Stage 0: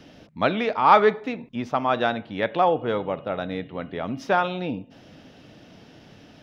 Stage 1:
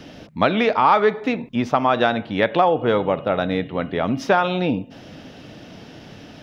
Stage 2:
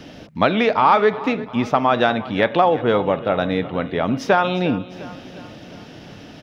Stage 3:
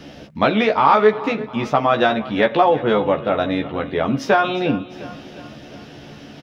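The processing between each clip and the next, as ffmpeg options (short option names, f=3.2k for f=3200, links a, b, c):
-af "acompressor=threshold=-21dB:ratio=4,volume=8dB"
-af "aecho=1:1:353|706|1059|1412|1765:0.133|0.0747|0.0418|0.0234|0.0131,volume=1dB"
-filter_complex "[0:a]asplit=2[a][b];[b]adelay=14,volume=-3.5dB[c];[a][c]amix=inputs=2:normalize=0,volume=-1dB"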